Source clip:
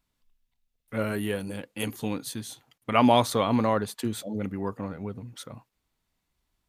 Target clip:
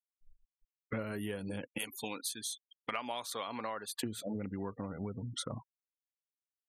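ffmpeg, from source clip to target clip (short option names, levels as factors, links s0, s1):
-filter_complex "[0:a]asettb=1/sr,asplit=3[s0][s1][s2];[s0]atrim=end=1.784[s3];[s1]atrim=start=1.78:end=4.01,asetpts=PTS-STARTPTS,afade=t=in:d=0.004:c=qsin,afade=t=out:st=2.226:d=0.004:c=qsin,highpass=f=1400:p=1[s4];[s2]atrim=start=4.006[s5];[s3][s4]acrossfade=d=0.004:c1=hsin:c2=qsin[s6];[s6][s5]acrossfade=d=0.004:c1=qsin:c2=hsin,afftfilt=real='re*gte(hypot(re,im),0.00631)':imag='im*gte(hypot(re,im),0.00631)':win_size=1024:overlap=0.75,acompressor=threshold=0.00708:ratio=12,volume=2.51"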